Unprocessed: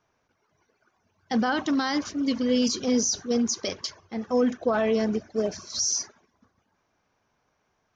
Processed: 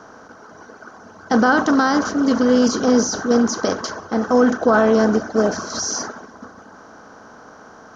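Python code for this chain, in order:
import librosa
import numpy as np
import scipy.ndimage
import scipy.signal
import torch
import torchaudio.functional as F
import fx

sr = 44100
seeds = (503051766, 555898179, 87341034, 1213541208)

y = fx.bin_compress(x, sr, power=0.6)
y = fx.high_shelf_res(y, sr, hz=1800.0, db=-6.5, q=3.0)
y = y * librosa.db_to_amplitude(6.0)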